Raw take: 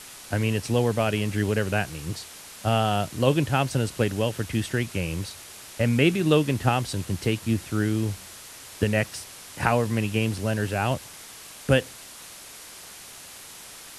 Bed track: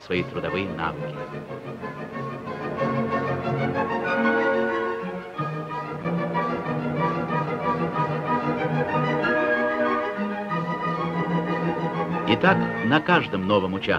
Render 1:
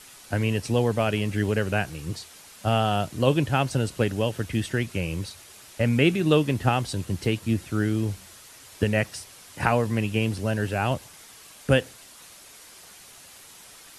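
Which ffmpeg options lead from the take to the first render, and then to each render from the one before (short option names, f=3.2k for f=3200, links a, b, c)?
-af "afftdn=nr=6:nf=-44"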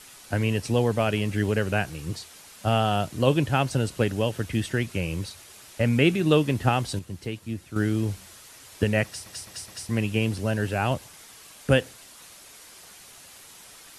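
-filter_complex "[0:a]asplit=7[a][b][c][d][e][f][g];[a]atrim=end=6.992[h];[b]atrim=start=6.988:end=7.762,asetpts=PTS-STARTPTS,volume=-8dB[i];[c]atrim=start=7.758:end=9.262[j];[d]atrim=start=9.048:end=9.262[k];[e]atrim=start=9.048:end=9.262[l];[f]atrim=start=9.048:end=9.262[m];[g]atrim=start=9.888[n];[h][i]acrossfade=d=0.004:c1=hsin:c2=hsin[o];[o][j]acrossfade=d=0.004:c1=hsin:c2=hsin[p];[p][k]acrossfade=d=0.004:c1=hsin:c2=hsin[q];[q][l]acrossfade=d=0.004:c1=hsin:c2=hsin[r];[r][m]acrossfade=d=0.004:c1=hsin:c2=hsin[s];[s][n]acrossfade=d=0.004:c1=hsin:c2=hsin"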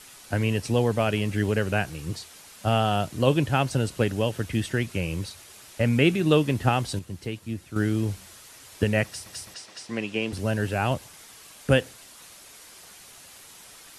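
-filter_complex "[0:a]asettb=1/sr,asplit=3[a][b][c];[a]atrim=end=9.544[d];[b]atrim=start=9.54:end=10.33,asetpts=PTS-STARTPTS,afade=t=in:d=0.004:c=qsin,afade=t=out:st=0.786:d=0.004:c=qsin,highpass=260,lowpass=6.1k[e];[c]atrim=start=10.326[f];[d][e]acrossfade=d=0.004:c1=hsin:c2=qsin[g];[g][f]acrossfade=d=0.004:c1=qsin:c2=hsin"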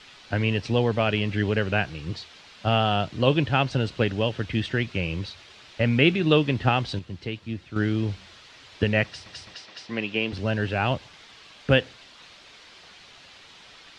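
-af "lowpass=f=3.9k:w=0.5412,lowpass=f=3.9k:w=1.3066,aemphasis=mode=production:type=75kf"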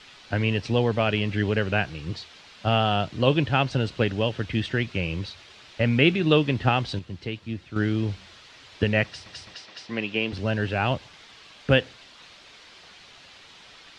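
-af anull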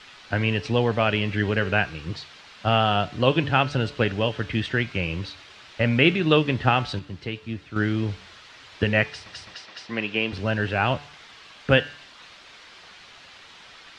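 -af "equalizer=f=1.4k:w=0.78:g=4.5,bandreject=f=144.9:t=h:w=4,bandreject=f=289.8:t=h:w=4,bandreject=f=434.7:t=h:w=4,bandreject=f=579.6:t=h:w=4,bandreject=f=724.5:t=h:w=4,bandreject=f=869.4:t=h:w=4,bandreject=f=1.0143k:t=h:w=4,bandreject=f=1.1592k:t=h:w=4,bandreject=f=1.3041k:t=h:w=4,bandreject=f=1.449k:t=h:w=4,bandreject=f=1.5939k:t=h:w=4,bandreject=f=1.7388k:t=h:w=4,bandreject=f=1.8837k:t=h:w=4,bandreject=f=2.0286k:t=h:w=4,bandreject=f=2.1735k:t=h:w=4,bandreject=f=2.3184k:t=h:w=4,bandreject=f=2.4633k:t=h:w=4,bandreject=f=2.6082k:t=h:w=4,bandreject=f=2.7531k:t=h:w=4,bandreject=f=2.898k:t=h:w=4,bandreject=f=3.0429k:t=h:w=4,bandreject=f=3.1878k:t=h:w=4,bandreject=f=3.3327k:t=h:w=4,bandreject=f=3.4776k:t=h:w=4,bandreject=f=3.6225k:t=h:w=4,bandreject=f=3.7674k:t=h:w=4,bandreject=f=3.9123k:t=h:w=4,bandreject=f=4.0572k:t=h:w=4,bandreject=f=4.2021k:t=h:w=4,bandreject=f=4.347k:t=h:w=4,bandreject=f=4.4919k:t=h:w=4,bandreject=f=4.6368k:t=h:w=4,bandreject=f=4.7817k:t=h:w=4,bandreject=f=4.9266k:t=h:w=4"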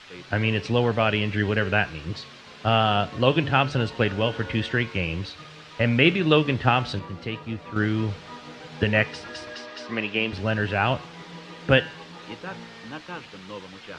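-filter_complex "[1:a]volume=-18dB[a];[0:a][a]amix=inputs=2:normalize=0"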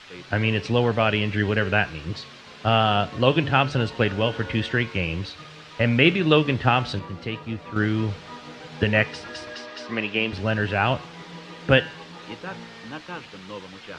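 -af "volume=1dB,alimiter=limit=-1dB:level=0:latency=1"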